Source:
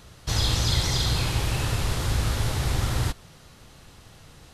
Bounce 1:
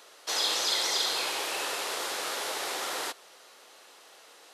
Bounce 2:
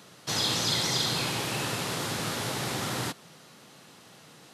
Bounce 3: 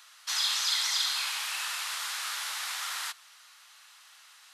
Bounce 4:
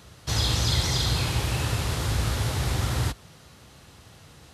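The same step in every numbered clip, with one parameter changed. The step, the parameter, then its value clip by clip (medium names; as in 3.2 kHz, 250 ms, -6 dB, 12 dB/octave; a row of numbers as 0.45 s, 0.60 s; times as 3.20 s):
high-pass, cutoff frequency: 410 Hz, 160 Hz, 1.1 kHz, 53 Hz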